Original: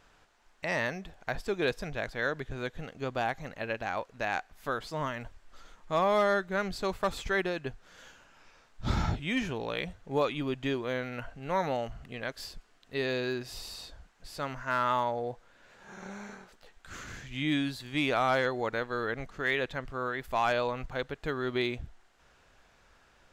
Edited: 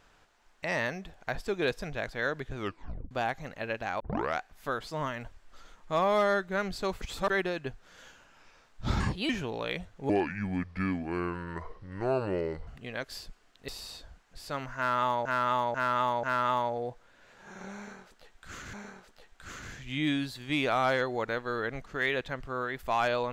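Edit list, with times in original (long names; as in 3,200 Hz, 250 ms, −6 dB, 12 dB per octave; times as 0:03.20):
0:02.56: tape stop 0.55 s
0:04.00: tape start 0.39 s
0:07.01–0:07.30: reverse
0:09.00–0:09.37: play speed 126%
0:10.17–0:11.95: play speed 69%
0:12.96–0:13.57: remove
0:14.65–0:15.14: repeat, 4 plays
0:16.18–0:17.15: repeat, 2 plays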